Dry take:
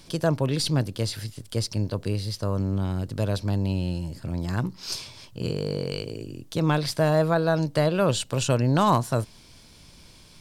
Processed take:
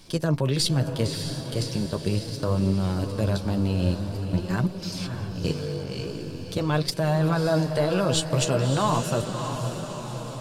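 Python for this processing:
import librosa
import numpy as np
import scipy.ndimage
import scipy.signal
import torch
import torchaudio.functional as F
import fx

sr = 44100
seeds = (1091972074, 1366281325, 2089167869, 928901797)

y = fx.level_steps(x, sr, step_db=14)
y = fx.echo_diffused(y, sr, ms=598, feedback_pct=60, wet_db=-7.5)
y = fx.chorus_voices(y, sr, voices=2, hz=0.42, base_ms=10, depth_ms=4.9, mix_pct=35)
y = F.gain(torch.from_numpy(y), 7.5).numpy()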